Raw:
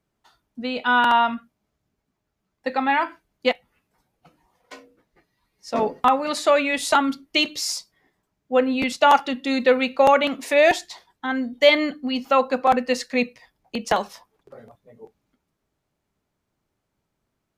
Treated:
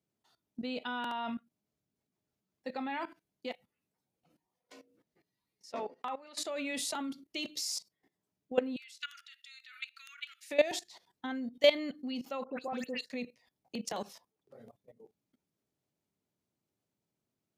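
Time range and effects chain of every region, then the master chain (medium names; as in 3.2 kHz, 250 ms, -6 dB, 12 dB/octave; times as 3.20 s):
5.72–6.38 s: band-pass filter 1.7 kHz, Q 0.5 + compression 1.5:1, threshold -30 dBFS
8.76–10.51 s: steep high-pass 1.3 kHz 96 dB/octave + compression 2:1, threshold -31 dBFS
12.44–13.05 s: treble shelf 6 kHz +6.5 dB + phase dispersion highs, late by 130 ms, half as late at 2.6 kHz
whole clip: high-pass 120 Hz 12 dB/octave; peaking EQ 1.3 kHz -8 dB 2 oct; level held to a coarse grid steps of 17 dB; trim -2.5 dB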